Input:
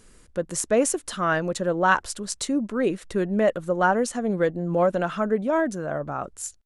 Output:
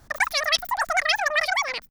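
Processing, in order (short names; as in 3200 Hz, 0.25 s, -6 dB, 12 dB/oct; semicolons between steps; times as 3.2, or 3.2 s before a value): wide varispeed 3.5×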